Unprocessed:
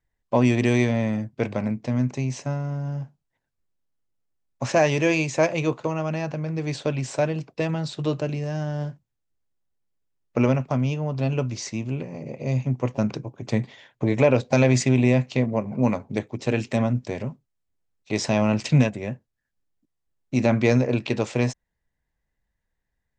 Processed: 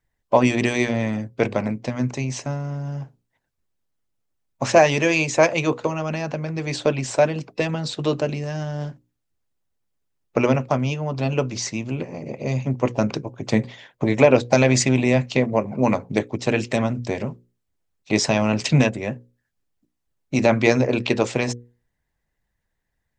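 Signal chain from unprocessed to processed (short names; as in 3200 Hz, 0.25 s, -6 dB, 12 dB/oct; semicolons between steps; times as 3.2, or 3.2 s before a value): notches 60/120/180/240/300/360/420/480/540 Hz; harmonic-percussive split harmonic -7 dB; gain +7 dB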